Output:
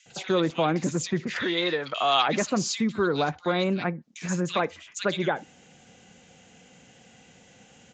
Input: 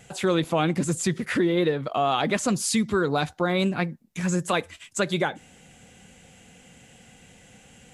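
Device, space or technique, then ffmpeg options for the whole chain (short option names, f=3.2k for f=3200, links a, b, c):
Bluetooth headset: -filter_complex "[0:a]asettb=1/sr,asplit=3[a][b][c];[a]atrim=end=1.364[d];[b]atrim=start=1.36:end=2.23,asetpts=PTS-STARTPTS,afade=t=in:d=0.004:c=qsin,afade=t=out:st=0.866:d=0.004:c=qsin,tiltshelf=f=750:g=-9.5[e];[c]atrim=start=2.226[f];[d][e]acrossfade=d=0.004:c1=hsin:c2=qsin[g];[g][f]acrossfade=d=0.004:c1=qsin:c2=hsin,highpass=f=170:p=1,acrossover=split=2200[h][i];[h]adelay=60[j];[j][i]amix=inputs=2:normalize=0,aresample=16000,aresample=44100" -ar 16000 -c:a sbc -b:a 64k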